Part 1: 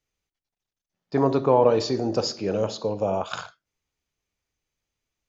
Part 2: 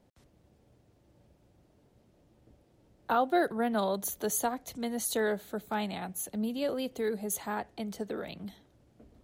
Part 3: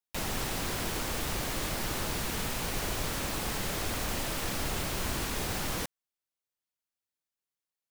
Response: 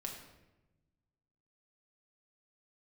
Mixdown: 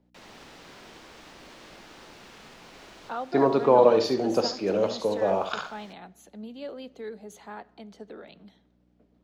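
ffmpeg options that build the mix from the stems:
-filter_complex "[0:a]adelay=2200,volume=0.5dB,asplit=2[link_01][link_02];[link_02]volume=-10.5dB[link_03];[1:a]acontrast=52,aeval=exprs='val(0)+0.00562*(sin(2*PI*60*n/s)+sin(2*PI*2*60*n/s)/2+sin(2*PI*3*60*n/s)/3+sin(2*PI*4*60*n/s)/4+sin(2*PI*5*60*n/s)/5)':channel_layout=same,volume=-13dB,asplit=3[link_04][link_05][link_06];[link_05]volume=-14.5dB[link_07];[2:a]acrusher=bits=5:mix=0:aa=0.5,volume=-10.5dB,asplit=2[link_08][link_09];[link_09]volume=-7.5dB[link_10];[link_06]apad=whole_len=353082[link_11];[link_08][link_11]sidechaincompress=threshold=-58dB:ratio=8:attack=16:release=1000[link_12];[3:a]atrim=start_sample=2205[link_13];[link_07][link_13]afir=irnorm=-1:irlink=0[link_14];[link_03][link_10]amix=inputs=2:normalize=0,aecho=0:1:71:1[link_15];[link_01][link_04][link_12][link_14][link_15]amix=inputs=5:normalize=0,acrossover=split=180 6100:gain=0.2 1 0.1[link_16][link_17][link_18];[link_16][link_17][link_18]amix=inputs=3:normalize=0"

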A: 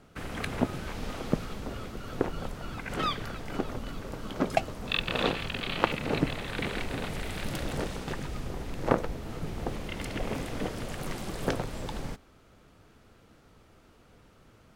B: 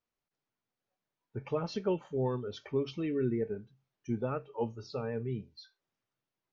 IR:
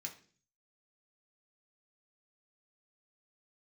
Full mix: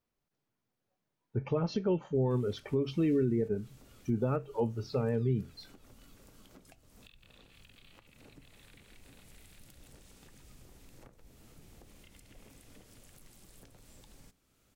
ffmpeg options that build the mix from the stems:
-filter_complex "[0:a]acompressor=threshold=-53dB:ratio=1.5,crystalizer=i=6:c=0,acrossover=split=120[link_01][link_02];[link_02]acompressor=threshold=-39dB:ratio=10[link_03];[link_01][link_03]amix=inputs=2:normalize=0,adelay=2150,volume=-19.5dB,asplit=2[link_04][link_05];[link_05]volume=-8.5dB[link_06];[1:a]volume=1dB,asplit=2[link_07][link_08];[link_08]apad=whole_len=745579[link_09];[link_04][link_09]sidechaincompress=threshold=-32dB:ratio=8:attack=8.7:release=703[link_10];[2:a]atrim=start_sample=2205[link_11];[link_06][link_11]afir=irnorm=-1:irlink=0[link_12];[link_10][link_07][link_12]amix=inputs=3:normalize=0,lowshelf=frequency=460:gain=8.5,alimiter=limit=-21dB:level=0:latency=1:release=137"

